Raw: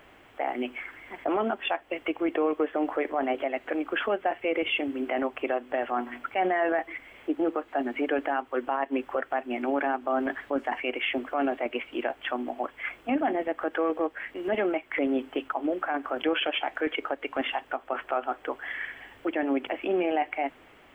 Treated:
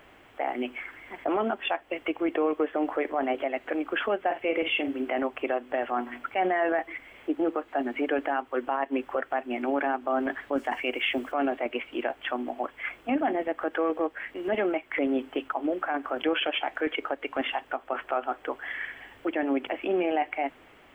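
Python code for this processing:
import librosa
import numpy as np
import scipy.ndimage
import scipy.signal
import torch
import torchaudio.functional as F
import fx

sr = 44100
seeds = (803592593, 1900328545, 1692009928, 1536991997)

y = fx.doubler(x, sr, ms=47.0, db=-9.5, at=(4.25, 5.02))
y = fx.bass_treble(y, sr, bass_db=2, treble_db=10, at=(10.52, 11.32))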